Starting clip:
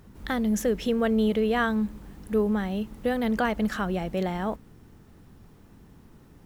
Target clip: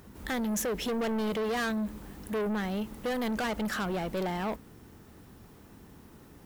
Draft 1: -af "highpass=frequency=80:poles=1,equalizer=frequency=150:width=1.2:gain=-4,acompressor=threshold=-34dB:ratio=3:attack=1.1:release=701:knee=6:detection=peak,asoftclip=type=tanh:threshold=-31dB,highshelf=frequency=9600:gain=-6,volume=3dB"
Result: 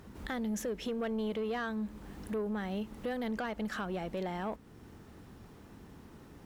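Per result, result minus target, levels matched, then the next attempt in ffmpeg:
downward compressor: peak gain reduction +13 dB; 8,000 Hz band −5.0 dB
-af "highpass=frequency=80:poles=1,equalizer=frequency=150:width=1.2:gain=-4,asoftclip=type=tanh:threshold=-31dB,highshelf=frequency=9600:gain=-6,volume=3dB"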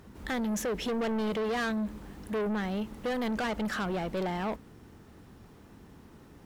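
8,000 Hz band −3.5 dB
-af "highpass=frequency=80:poles=1,equalizer=frequency=150:width=1.2:gain=-4,asoftclip=type=tanh:threshold=-31dB,highshelf=frequency=9600:gain=5.5,volume=3dB"

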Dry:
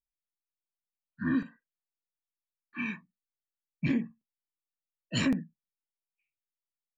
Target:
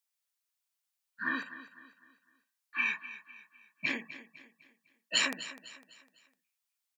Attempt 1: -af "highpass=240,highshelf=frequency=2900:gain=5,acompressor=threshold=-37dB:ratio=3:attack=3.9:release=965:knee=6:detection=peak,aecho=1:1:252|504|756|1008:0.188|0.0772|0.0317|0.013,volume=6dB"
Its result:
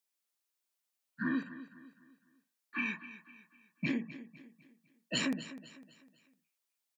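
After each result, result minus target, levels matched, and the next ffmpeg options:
250 Hz band +12.5 dB; downward compressor: peak gain reduction +7.5 dB
-af "highpass=780,highshelf=frequency=2900:gain=5,acompressor=threshold=-37dB:ratio=3:attack=3.9:release=965:knee=6:detection=peak,aecho=1:1:252|504|756|1008:0.188|0.0772|0.0317|0.013,volume=6dB"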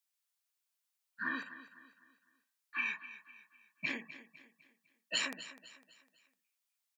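downward compressor: peak gain reduction +7 dB
-af "highpass=780,highshelf=frequency=2900:gain=5,acompressor=threshold=-26.5dB:ratio=3:attack=3.9:release=965:knee=6:detection=peak,aecho=1:1:252|504|756|1008:0.188|0.0772|0.0317|0.013,volume=6dB"

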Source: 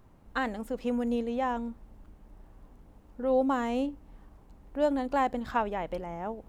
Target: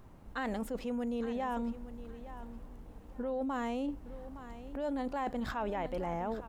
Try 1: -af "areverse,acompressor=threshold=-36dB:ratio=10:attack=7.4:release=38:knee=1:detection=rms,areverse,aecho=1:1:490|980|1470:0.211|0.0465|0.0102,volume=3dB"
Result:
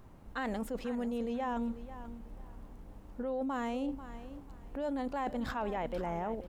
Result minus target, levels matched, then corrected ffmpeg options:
echo 373 ms early
-af "areverse,acompressor=threshold=-36dB:ratio=10:attack=7.4:release=38:knee=1:detection=rms,areverse,aecho=1:1:863|1726|2589:0.211|0.0465|0.0102,volume=3dB"

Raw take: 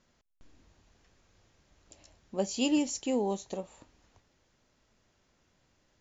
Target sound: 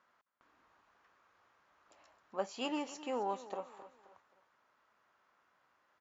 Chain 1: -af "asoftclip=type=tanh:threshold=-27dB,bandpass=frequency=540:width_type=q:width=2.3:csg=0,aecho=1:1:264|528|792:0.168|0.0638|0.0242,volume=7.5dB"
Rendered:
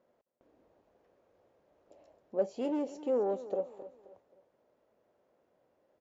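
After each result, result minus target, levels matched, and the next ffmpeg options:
soft clipping: distortion +16 dB; 1,000 Hz band −9.5 dB
-af "asoftclip=type=tanh:threshold=-16dB,bandpass=frequency=540:width_type=q:width=2.3:csg=0,aecho=1:1:264|528|792:0.168|0.0638|0.0242,volume=7.5dB"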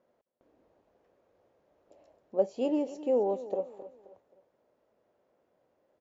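1,000 Hz band −9.5 dB
-af "asoftclip=type=tanh:threshold=-16dB,bandpass=frequency=1200:width_type=q:width=2.3:csg=0,aecho=1:1:264|528|792:0.168|0.0638|0.0242,volume=7.5dB"

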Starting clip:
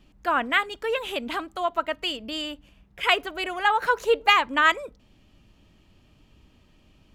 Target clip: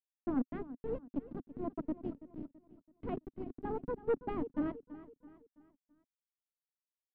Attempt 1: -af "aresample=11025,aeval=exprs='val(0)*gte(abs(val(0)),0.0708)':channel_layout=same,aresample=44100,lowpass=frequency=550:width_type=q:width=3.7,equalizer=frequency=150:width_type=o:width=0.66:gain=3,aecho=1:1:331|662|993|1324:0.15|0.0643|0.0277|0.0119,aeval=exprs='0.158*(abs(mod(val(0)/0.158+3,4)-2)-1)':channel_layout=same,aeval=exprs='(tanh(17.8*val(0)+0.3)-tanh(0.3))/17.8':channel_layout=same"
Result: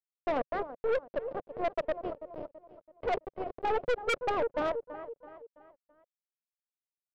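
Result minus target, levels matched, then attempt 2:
250 Hz band −12.0 dB
-af "aresample=11025,aeval=exprs='val(0)*gte(abs(val(0)),0.0708)':channel_layout=same,aresample=44100,lowpass=frequency=260:width_type=q:width=3.7,equalizer=frequency=150:width_type=o:width=0.66:gain=3,aecho=1:1:331|662|993|1324:0.15|0.0643|0.0277|0.0119,aeval=exprs='0.158*(abs(mod(val(0)/0.158+3,4)-2)-1)':channel_layout=same,aeval=exprs='(tanh(17.8*val(0)+0.3)-tanh(0.3))/17.8':channel_layout=same"

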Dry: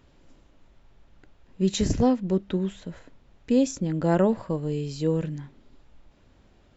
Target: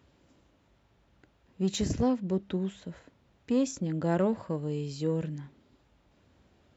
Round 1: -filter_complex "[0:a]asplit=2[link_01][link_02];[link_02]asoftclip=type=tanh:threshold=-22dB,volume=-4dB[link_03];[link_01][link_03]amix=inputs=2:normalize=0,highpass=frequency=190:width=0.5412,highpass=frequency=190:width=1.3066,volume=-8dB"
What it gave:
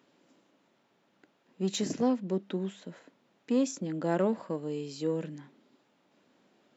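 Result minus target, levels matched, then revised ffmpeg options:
125 Hz band −5.0 dB
-filter_complex "[0:a]asplit=2[link_01][link_02];[link_02]asoftclip=type=tanh:threshold=-22dB,volume=-4dB[link_03];[link_01][link_03]amix=inputs=2:normalize=0,highpass=frequency=56:width=0.5412,highpass=frequency=56:width=1.3066,volume=-8dB"

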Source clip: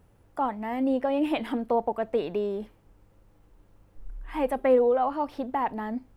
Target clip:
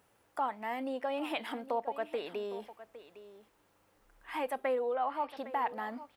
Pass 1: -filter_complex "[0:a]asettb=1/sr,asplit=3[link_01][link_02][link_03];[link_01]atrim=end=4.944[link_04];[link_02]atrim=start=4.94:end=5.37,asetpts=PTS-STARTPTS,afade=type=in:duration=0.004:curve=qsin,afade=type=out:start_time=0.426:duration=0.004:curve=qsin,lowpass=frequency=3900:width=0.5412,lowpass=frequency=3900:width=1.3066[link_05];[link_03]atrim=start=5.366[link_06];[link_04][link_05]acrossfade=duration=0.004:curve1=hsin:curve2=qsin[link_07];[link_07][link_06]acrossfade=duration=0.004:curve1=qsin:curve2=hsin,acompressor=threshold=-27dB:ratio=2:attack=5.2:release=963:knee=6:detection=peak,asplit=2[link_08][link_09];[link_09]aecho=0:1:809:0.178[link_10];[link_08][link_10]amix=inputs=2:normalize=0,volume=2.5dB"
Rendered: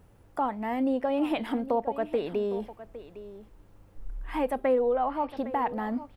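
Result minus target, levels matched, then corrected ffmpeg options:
1,000 Hz band −2.5 dB
-filter_complex "[0:a]asettb=1/sr,asplit=3[link_01][link_02][link_03];[link_01]atrim=end=4.944[link_04];[link_02]atrim=start=4.94:end=5.37,asetpts=PTS-STARTPTS,afade=type=in:duration=0.004:curve=qsin,afade=type=out:start_time=0.426:duration=0.004:curve=qsin,lowpass=frequency=3900:width=0.5412,lowpass=frequency=3900:width=1.3066[link_05];[link_03]atrim=start=5.366[link_06];[link_04][link_05]acrossfade=duration=0.004:curve1=hsin:curve2=qsin[link_07];[link_07][link_06]acrossfade=duration=0.004:curve1=qsin:curve2=hsin,acompressor=threshold=-27dB:ratio=2:attack=5.2:release=963:knee=6:detection=peak,highpass=frequency=1100:poles=1,asplit=2[link_08][link_09];[link_09]aecho=0:1:809:0.178[link_10];[link_08][link_10]amix=inputs=2:normalize=0,volume=2.5dB"

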